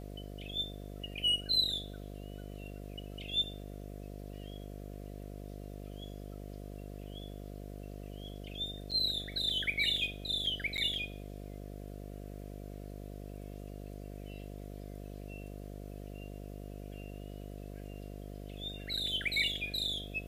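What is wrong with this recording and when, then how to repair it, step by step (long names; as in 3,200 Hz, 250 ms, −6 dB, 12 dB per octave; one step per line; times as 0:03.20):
mains buzz 50 Hz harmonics 14 −45 dBFS
0:08.91–0:08.92: drop-out 6.9 ms
0:10.77–0:10.78: drop-out 9.5 ms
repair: hum removal 50 Hz, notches 14
repair the gap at 0:08.91, 6.9 ms
repair the gap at 0:10.77, 9.5 ms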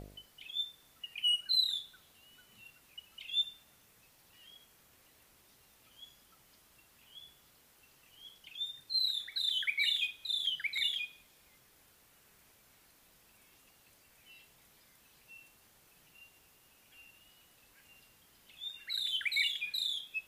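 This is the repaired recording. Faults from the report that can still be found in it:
none of them is left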